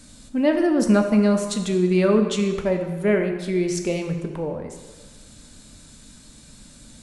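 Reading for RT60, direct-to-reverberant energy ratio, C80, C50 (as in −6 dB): 1.3 s, 4.0 dB, 8.5 dB, 6.5 dB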